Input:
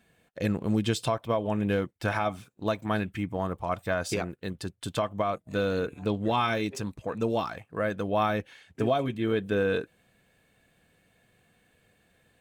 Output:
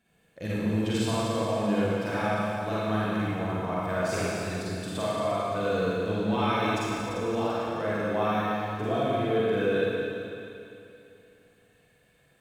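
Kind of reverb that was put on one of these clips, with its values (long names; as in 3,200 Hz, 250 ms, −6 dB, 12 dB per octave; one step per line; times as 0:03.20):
four-comb reverb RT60 2.8 s, DRR −9 dB
level −8 dB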